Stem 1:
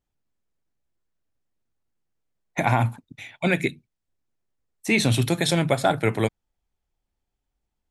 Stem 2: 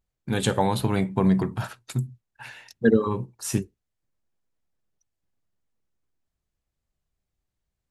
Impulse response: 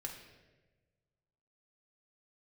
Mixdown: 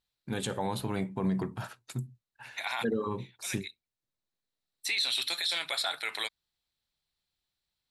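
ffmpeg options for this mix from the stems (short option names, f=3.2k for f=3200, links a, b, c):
-filter_complex "[0:a]highpass=1.4k,equalizer=f=4k:t=o:w=0.45:g=14.5,bandreject=f=6.5k:w=7.9,volume=0.5dB[a];[1:a]lowshelf=f=85:g=-8.5,volume=-6.5dB,asplit=2[b][c];[c]apad=whole_len=348575[d];[a][d]sidechaincompress=threshold=-41dB:ratio=16:attack=5.7:release=1120[e];[e][b]amix=inputs=2:normalize=0,alimiter=limit=-21dB:level=0:latency=1:release=37"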